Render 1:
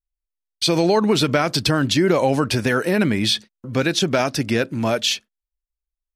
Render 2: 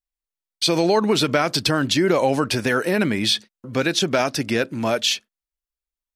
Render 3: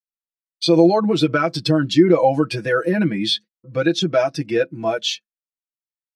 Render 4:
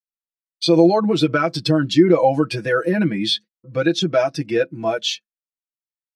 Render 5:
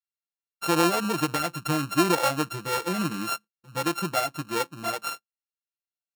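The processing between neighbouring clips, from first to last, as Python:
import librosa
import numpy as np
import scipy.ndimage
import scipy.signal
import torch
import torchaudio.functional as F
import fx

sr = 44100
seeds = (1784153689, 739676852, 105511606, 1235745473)

y1 = fx.low_shelf(x, sr, hz=140.0, db=-8.5)
y2 = y1 + 0.9 * np.pad(y1, (int(6.1 * sr / 1000.0), 0))[:len(y1)]
y2 = fx.spectral_expand(y2, sr, expansion=1.5)
y3 = y2
y4 = np.r_[np.sort(y3[:len(y3) // 32 * 32].reshape(-1, 32), axis=1).ravel(), y3[len(y3) // 32 * 32:]]
y4 = y4 * 10.0 ** (-9.0 / 20.0)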